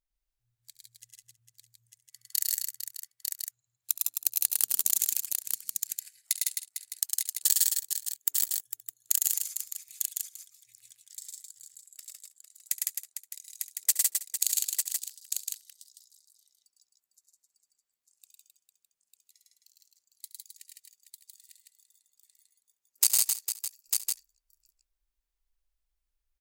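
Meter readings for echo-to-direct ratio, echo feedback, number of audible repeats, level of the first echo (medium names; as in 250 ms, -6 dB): 3.0 dB, no regular repeats, 11, -16.5 dB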